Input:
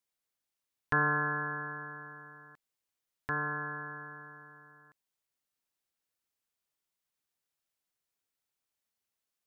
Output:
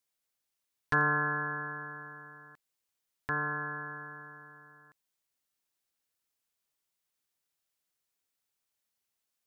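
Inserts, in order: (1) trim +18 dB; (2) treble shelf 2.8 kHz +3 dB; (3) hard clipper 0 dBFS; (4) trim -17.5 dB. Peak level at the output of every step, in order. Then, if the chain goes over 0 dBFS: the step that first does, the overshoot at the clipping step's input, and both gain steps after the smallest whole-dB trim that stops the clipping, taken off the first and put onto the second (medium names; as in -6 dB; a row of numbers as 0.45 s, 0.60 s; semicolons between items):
+3.5 dBFS, +4.0 dBFS, 0.0 dBFS, -17.5 dBFS; step 1, 4.0 dB; step 1 +14 dB, step 4 -13.5 dB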